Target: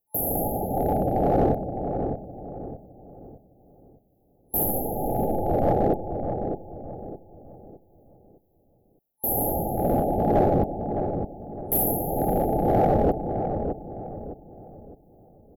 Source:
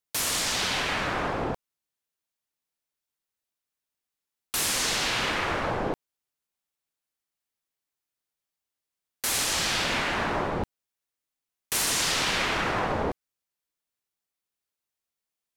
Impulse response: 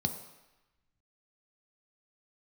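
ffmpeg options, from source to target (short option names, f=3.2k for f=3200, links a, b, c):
-filter_complex "[0:a]asettb=1/sr,asplit=3[a][b][c];[a]atrim=end=4.654[d];[b]atrim=start=4.65:end=5.8,asetpts=PTS-STARTPTS,afade=t=in:d=0.004:c=qsin,afade=t=out:st=1.146:d=0.004:c=qsin,aeval=exprs='if(lt(val(0),0),0.708*val(0),val(0))':c=same[e];[c]atrim=start=5.796[f];[d][e]acrossfade=d=0.004:c1=hsin:c2=qsin[g];[g][f]acrossfade=d=0.004:c1=qsin:c2=hsin,afftfilt=real='re*(1-between(b*sr/4096,870,11000))':imag='im*(1-between(b*sr/4096,870,11000))':win_size=4096:overlap=0.75,tremolo=f=2.1:d=0.34,asplit=2[h][i];[i]volume=29dB,asoftclip=hard,volume=-29dB,volume=-3.5dB[j];[h][j]amix=inputs=2:normalize=0,asplit=2[k][l];[l]adelay=610,lowpass=f=1k:p=1,volume=-6dB,asplit=2[m][n];[n]adelay=610,lowpass=f=1k:p=1,volume=0.4,asplit=2[o][p];[p]adelay=610,lowpass=f=1k:p=1,volume=0.4,asplit=2[q][r];[r]adelay=610,lowpass=f=1k:p=1,volume=0.4,asplit=2[s][t];[t]adelay=610,lowpass=f=1k:p=1,volume=0.4[u];[k][m][o][q][s][u]amix=inputs=6:normalize=0,volume=7dB"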